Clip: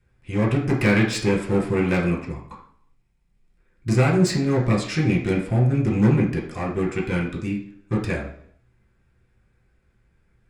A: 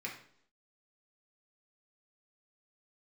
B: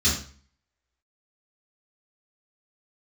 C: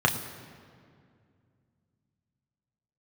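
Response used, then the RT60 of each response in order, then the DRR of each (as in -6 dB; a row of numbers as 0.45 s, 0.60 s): A; 0.65 s, 0.45 s, 2.3 s; -2.5 dB, -8.5 dB, 1.5 dB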